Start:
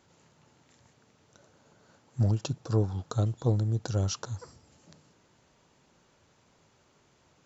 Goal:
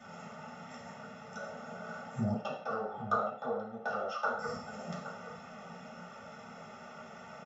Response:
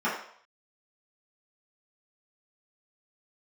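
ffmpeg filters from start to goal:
-filter_complex "[0:a]aecho=1:1:1.5:0.99,acompressor=threshold=-35dB:ratio=10,asettb=1/sr,asplit=3[link_01][link_02][link_03];[link_01]atrim=end=2.344[link_04];[link_02]atrim=start=2.34:end=4.39,asetpts=PTS-STARTPTS,afade=type=in:duration=0.004:curve=qsin,afade=type=out:start_time=2.046:duration=0.004:curve=qsin,highpass=450,lowpass=2600[link_05];[link_03]atrim=start=4.386[link_06];[link_04][link_05]acrossfade=duration=0.004:curve1=hsin:curve2=qsin[link_07];[link_07][link_06]acrossfade=duration=0.004:curve1=qsin:curve2=hsin,asplit=2[link_08][link_09];[link_09]adelay=816.3,volume=-11dB,highshelf=frequency=4000:gain=-18.4[link_10];[link_08][link_10]amix=inputs=2:normalize=0[link_11];[1:a]atrim=start_sample=2205,afade=type=out:start_time=0.23:duration=0.01,atrim=end_sample=10584[link_12];[link_11][link_12]afir=irnorm=-1:irlink=0,volume=2dB"

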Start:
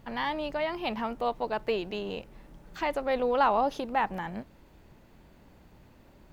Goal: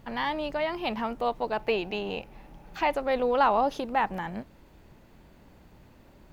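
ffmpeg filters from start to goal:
ffmpeg -i in.wav -filter_complex "[0:a]asettb=1/sr,asplit=3[link_01][link_02][link_03];[link_01]atrim=end=1.574[link_04];[link_02]atrim=start=1.57:end=2.95,asetpts=PTS-STARTPTS,afade=type=in:duration=0.004:curve=qsin,afade=type=out:start_time=1.376:duration=0.004:curve=qsin,equalizer=frequency=800:width_type=o:width=0.33:gain=9,equalizer=frequency=2500:width_type=o:width=0.33:gain=6,equalizer=frequency=8000:width_type=o:width=0.33:gain=-5[link_05];[link_03]atrim=start=2.946[link_06];[link_04][link_05]acrossfade=duration=0.004:curve1=hsin:curve2=qsin[link_07];[link_07][link_06]acrossfade=duration=0.004:curve1=qsin:curve2=hsin,volume=1.5dB" out.wav

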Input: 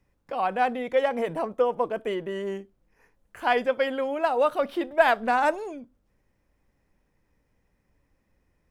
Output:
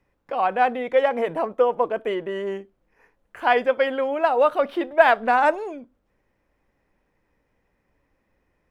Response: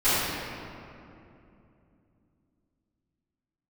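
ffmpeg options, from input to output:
-af "bass=frequency=250:gain=-7,treble=frequency=4000:gain=-9,volume=4.5dB"

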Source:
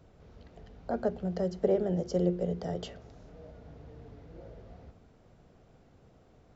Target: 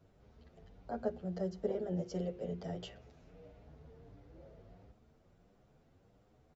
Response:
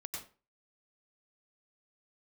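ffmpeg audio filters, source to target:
-filter_complex "[0:a]asettb=1/sr,asplit=3[link_01][link_02][link_03];[link_01]atrim=end=1.974[link_04];[link_02]atrim=start=1.97:end=3.65,asetpts=PTS-STARTPTS,afade=type=in:duration=0.004:curve=qsin,afade=type=out:start_time=1.676:duration=0.004:curve=qsin,equalizer=frequency=2500:width=2.1:gain=6[link_05];[link_03]atrim=start=3.646[link_06];[link_04][link_05]acrossfade=duration=0.004:curve1=hsin:curve2=qsin[link_07];[link_07][link_06]acrossfade=duration=0.004:curve1=qsin:curve2=hsin,asplit=2[link_08][link_09];[link_09]adelay=8.5,afreqshift=1.5[link_10];[link_08][link_10]amix=inputs=2:normalize=1,volume=-4.5dB"

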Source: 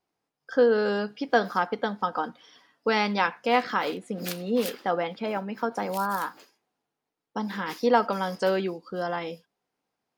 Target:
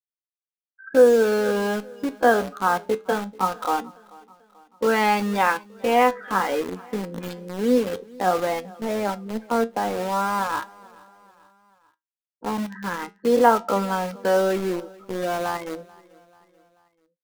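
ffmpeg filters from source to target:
ffmpeg -i in.wav -filter_complex "[0:a]highpass=frequency=160:width=0.5412,highpass=frequency=160:width=1.3066,afftfilt=real='re*gte(hypot(re,im),0.0398)':imag='im*gte(hypot(re,im),0.0398)':win_size=1024:overlap=0.75,highshelf=frequency=3600:gain=-10,atempo=0.59,asplit=2[link_01][link_02];[link_02]acrusher=bits=4:mix=0:aa=0.000001,volume=-4.5dB[link_03];[link_01][link_03]amix=inputs=2:normalize=0,flanger=delay=8.2:depth=4:regen=72:speed=0.2:shape=triangular,asplit=2[link_04][link_05];[link_05]aecho=0:1:437|874|1311:0.0668|0.0341|0.0174[link_06];[link_04][link_06]amix=inputs=2:normalize=0,volume=5dB" out.wav

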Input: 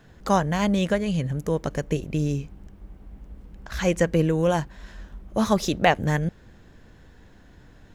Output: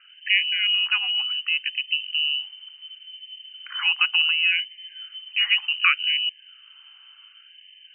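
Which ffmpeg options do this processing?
ffmpeg -i in.wav -af "lowpass=frequency=2600:width_type=q:width=0.5098,lowpass=frequency=2600:width_type=q:width=0.6013,lowpass=frequency=2600:width_type=q:width=0.9,lowpass=frequency=2600:width_type=q:width=2.563,afreqshift=-3100,afftfilt=real='re*gte(b*sr/1024,710*pow(1700/710,0.5+0.5*sin(2*PI*0.68*pts/sr)))':imag='im*gte(b*sr/1024,710*pow(1700/710,0.5+0.5*sin(2*PI*0.68*pts/sr)))':win_size=1024:overlap=0.75" out.wav

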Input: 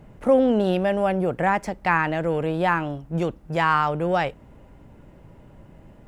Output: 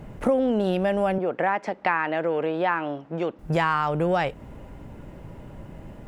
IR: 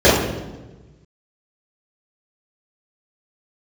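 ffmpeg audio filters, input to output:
-filter_complex "[0:a]acompressor=threshold=-27dB:ratio=4,asettb=1/sr,asplit=3[link_01][link_02][link_03];[link_01]atrim=end=1.184[link_04];[link_02]atrim=start=1.18:end=3.39,asetpts=PTS-STARTPTS,afade=type=in:duration=0.004:curve=qsin,afade=type=out:start_time=2.206:duration=0.004:curve=qsin,highpass=300,lowpass=3600[link_05];[link_03]atrim=start=3.386[link_06];[link_04][link_05]acrossfade=duration=0.004:curve1=hsin:curve2=qsin[link_07];[link_07][link_06]acrossfade=duration=0.004:curve1=qsin:curve2=hsin,volume=6.5dB"

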